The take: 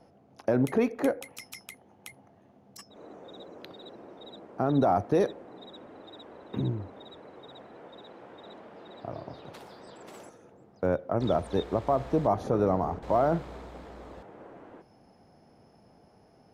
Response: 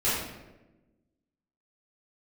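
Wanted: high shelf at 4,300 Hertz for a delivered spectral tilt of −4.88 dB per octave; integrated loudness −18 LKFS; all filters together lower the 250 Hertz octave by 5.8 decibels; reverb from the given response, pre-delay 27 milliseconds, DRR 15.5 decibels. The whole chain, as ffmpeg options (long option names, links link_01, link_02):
-filter_complex "[0:a]equalizer=frequency=250:width_type=o:gain=-7.5,highshelf=frequency=4300:gain=-5,asplit=2[link_01][link_02];[1:a]atrim=start_sample=2205,adelay=27[link_03];[link_02][link_03]afir=irnorm=-1:irlink=0,volume=-27.5dB[link_04];[link_01][link_04]amix=inputs=2:normalize=0,volume=12.5dB"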